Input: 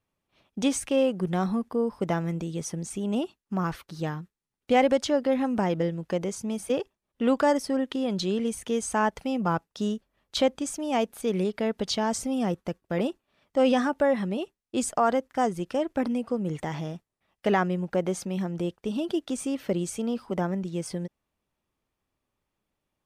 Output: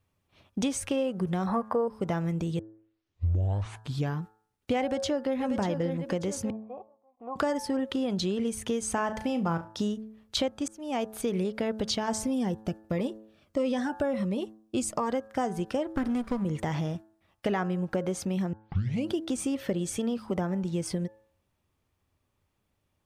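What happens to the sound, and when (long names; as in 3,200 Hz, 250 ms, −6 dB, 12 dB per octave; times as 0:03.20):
0:01.47–0:01.88: flat-topped bell 990 Hz +14 dB 2.3 octaves
0:02.59: tape start 1.60 s
0:04.81–0:05.38: delay throw 590 ms, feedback 35%, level −8.5 dB
0:06.50–0:07.36: formant resonators in series a
0:08.94–0:09.83: flutter between parallel walls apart 6.1 metres, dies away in 0.21 s
0:10.68–0:11.23: fade in
0:12.25–0:15.11: phaser whose notches keep moving one way falling 1.5 Hz
0:15.91–0:16.45: lower of the sound and its delayed copy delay 0.57 ms
0:18.53: tape start 0.56 s
0:19.61–0:20.12: hollow resonant body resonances 1,800/3,400 Hz, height 12 dB
whole clip: parametric band 91 Hz +11.5 dB 0.8 octaves; hum removal 108.8 Hz, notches 16; downward compressor 4 to 1, threshold −30 dBFS; level +3.5 dB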